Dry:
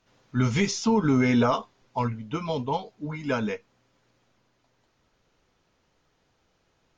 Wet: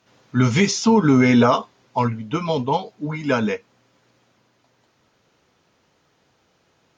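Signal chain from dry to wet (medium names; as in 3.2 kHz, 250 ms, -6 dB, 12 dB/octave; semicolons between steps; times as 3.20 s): high-pass 96 Hz; trim +7 dB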